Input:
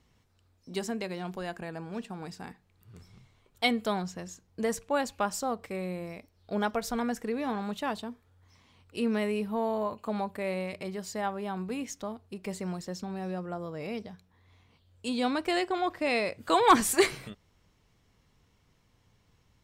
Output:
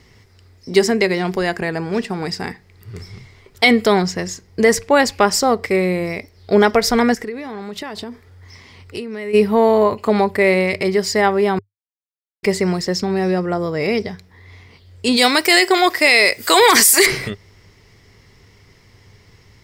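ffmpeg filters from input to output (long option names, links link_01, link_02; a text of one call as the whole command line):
ffmpeg -i in.wav -filter_complex "[0:a]asplit=3[link_01][link_02][link_03];[link_01]afade=type=out:start_time=7.14:duration=0.02[link_04];[link_02]acompressor=threshold=-41dB:ratio=16:attack=3.2:release=140:knee=1:detection=peak,afade=type=in:start_time=7.14:duration=0.02,afade=type=out:start_time=9.33:duration=0.02[link_05];[link_03]afade=type=in:start_time=9.33:duration=0.02[link_06];[link_04][link_05][link_06]amix=inputs=3:normalize=0,asplit=3[link_07][link_08][link_09];[link_07]afade=type=out:start_time=15.16:duration=0.02[link_10];[link_08]aemphasis=mode=production:type=riaa,afade=type=in:start_time=15.16:duration=0.02,afade=type=out:start_time=17.05:duration=0.02[link_11];[link_09]afade=type=in:start_time=17.05:duration=0.02[link_12];[link_10][link_11][link_12]amix=inputs=3:normalize=0,asplit=3[link_13][link_14][link_15];[link_13]atrim=end=11.59,asetpts=PTS-STARTPTS,afade=type=out:start_time=11.586:duration=0.004:curve=hsin[link_16];[link_14]atrim=start=11.59:end=12.43,asetpts=PTS-STARTPTS,volume=0[link_17];[link_15]atrim=start=12.43,asetpts=PTS-STARTPTS,afade=type=in:duration=0.004:curve=hsin[link_18];[link_16][link_17][link_18]concat=n=3:v=0:a=1,equalizer=frequency=100:width_type=o:width=0.33:gain=8,equalizer=frequency=400:width_type=o:width=0.33:gain=9,equalizer=frequency=2000:width_type=o:width=0.33:gain=11,equalizer=frequency=5000:width_type=o:width=0.33:gain=10,alimiter=level_in=15.5dB:limit=-1dB:release=50:level=0:latency=1,volume=-1dB" out.wav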